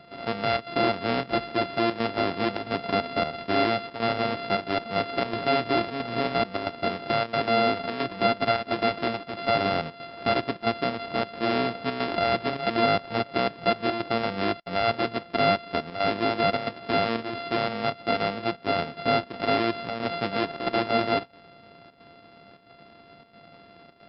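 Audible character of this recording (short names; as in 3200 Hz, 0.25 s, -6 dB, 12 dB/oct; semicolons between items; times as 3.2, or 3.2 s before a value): a buzz of ramps at a fixed pitch in blocks of 64 samples; chopped level 1.5 Hz, depth 60%, duty 85%; MP3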